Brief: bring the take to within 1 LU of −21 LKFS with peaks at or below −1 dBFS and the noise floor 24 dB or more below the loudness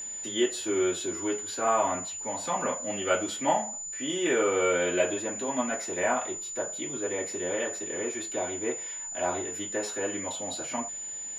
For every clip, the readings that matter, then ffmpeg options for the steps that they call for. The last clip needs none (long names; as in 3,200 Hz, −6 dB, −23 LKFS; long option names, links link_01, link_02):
interfering tone 7,000 Hz; level of the tone −35 dBFS; integrated loudness −29.5 LKFS; sample peak −12.0 dBFS; target loudness −21.0 LKFS
→ -af "bandreject=frequency=7000:width=30"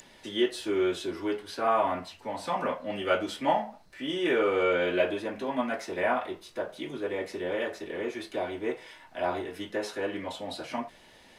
interfering tone none found; integrated loudness −30.5 LKFS; sample peak −12.0 dBFS; target loudness −21.0 LKFS
→ -af "volume=9.5dB"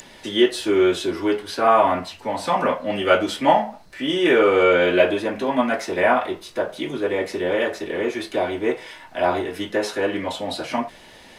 integrated loudness −21.0 LKFS; sample peak −2.5 dBFS; background noise floor −46 dBFS